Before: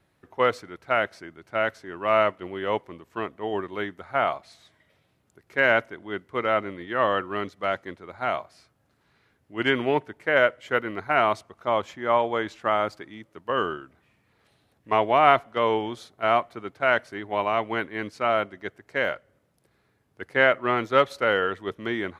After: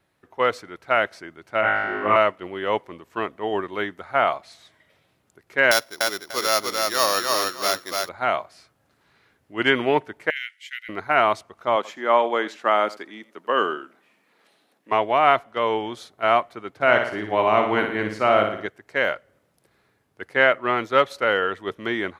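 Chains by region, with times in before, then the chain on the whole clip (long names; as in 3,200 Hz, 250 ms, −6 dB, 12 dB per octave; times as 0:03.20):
0:01.61–0:02.16: high-frequency loss of the air 390 metres + flutter between parallel walls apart 3.3 metres, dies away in 1.5 s
0:05.71–0:08.09: samples sorted by size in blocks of 8 samples + low-shelf EQ 410 Hz −9.5 dB + repeating echo 295 ms, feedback 20%, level −3 dB
0:10.30–0:10.89: Butterworth high-pass 1,900 Hz 48 dB per octave + downward compressor 3 to 1, threshold −32 dBFS
0:11.76–0:14.92: high-pass filter 200 Hz 24 dB per octave + single-tap delay 85 ms −19 dB
0:16.75–0:18.66: high-pass filter 58 Hz + low-shelf EQ 400 Hz +8 dB + flutter between parallel walls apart 9.7 metres, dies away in 0.59 s
whole clip: automatic gain control gain up to 5 dB; low-shelf EQ 260 Hz −6 dB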